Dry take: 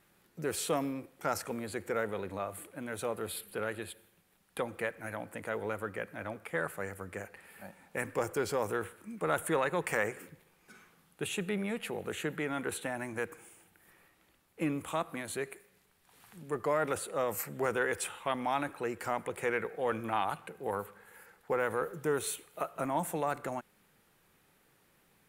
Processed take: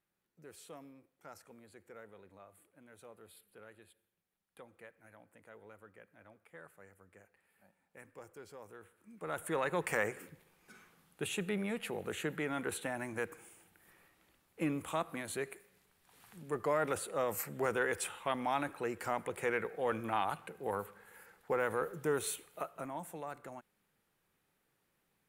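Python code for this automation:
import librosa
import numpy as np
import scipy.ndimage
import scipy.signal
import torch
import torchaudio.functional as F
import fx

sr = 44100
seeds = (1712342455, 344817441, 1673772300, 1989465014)

y = fx.gain(x, sr, db=fx.line((8.79, -19.5), (9.09, -12.5), (9.73, -2.0), (22.47, -2.0), (22.99, -11.0)))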